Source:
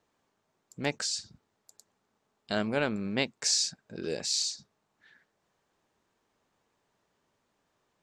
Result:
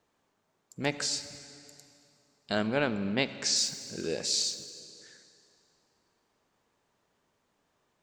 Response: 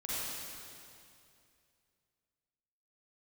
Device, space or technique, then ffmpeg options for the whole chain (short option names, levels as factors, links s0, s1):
saturated reverb return: -filter_complex "[0:a]asplit=2[s0][s1];[1:a]atrim=start_sample=2205[s2];[s1][s2]afir=irnorm=-1:irlink=0,asoftclip=type=tanh:threshold=0.0841,volume=0.2[s3];[s0][s3]amix=inputs=2:normalize=0,asettb=1/sr,asplit=3[s4][s5][s6];[s4]atrim=end=2.674[s7];[s5]atrim=start=2.67:end=3.56,asetpts=PTS-STARTPTS,afade=t=in:d=0.004:c=qsin,afade=t=out:st=0.886:d=0.004:c=qsin,lowpass=6400[s8];[s6]atrim=start=3.556[s9];[s7][s8]acrossfade=d=0.004:c1=hsin:c2=qsin[s10];[s10][s9]acrossfade=d=0.004:c1=qsin:c2=hsin"